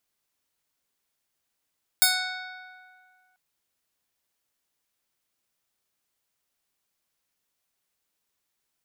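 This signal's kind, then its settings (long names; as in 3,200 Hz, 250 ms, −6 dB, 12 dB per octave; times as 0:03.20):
Karplus-Strong string F#5, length 1.34 s, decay 2.03 s, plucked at 0.26, bright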